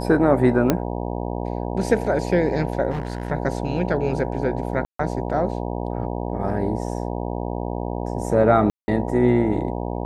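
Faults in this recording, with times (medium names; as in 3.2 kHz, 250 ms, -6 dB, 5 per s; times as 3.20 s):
buzz 60 Hz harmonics 16 -27 dBFS
0.70 s: pop -4 dBFS
2.90–3.32 s: clipped -21 dBFS
4.85–4.99 s: dropout 144 ms
8.70–8.88 s: dropout 180 ms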